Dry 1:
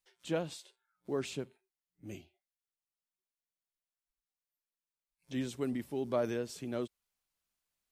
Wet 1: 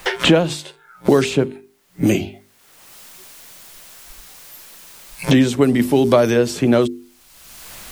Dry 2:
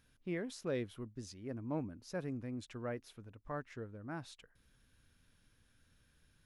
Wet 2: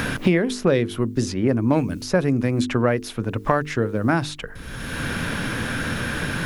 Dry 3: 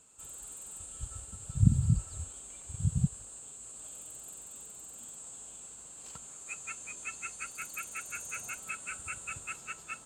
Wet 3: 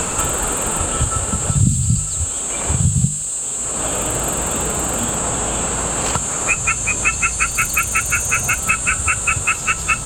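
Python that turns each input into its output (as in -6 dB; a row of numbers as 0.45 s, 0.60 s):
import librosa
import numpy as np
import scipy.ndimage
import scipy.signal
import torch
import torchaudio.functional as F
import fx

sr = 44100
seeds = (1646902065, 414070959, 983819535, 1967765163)

y = fx.hum_notches(x, sr, base_hz=50, count=9)
y = fx.band_squash(y, sr, depth_pct=100)
y = y * 10.0 ** (-1.5 / 20.0) / np.max(np.abs(y))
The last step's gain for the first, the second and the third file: +22.5 dB, +22.0 dB, +22.5 dB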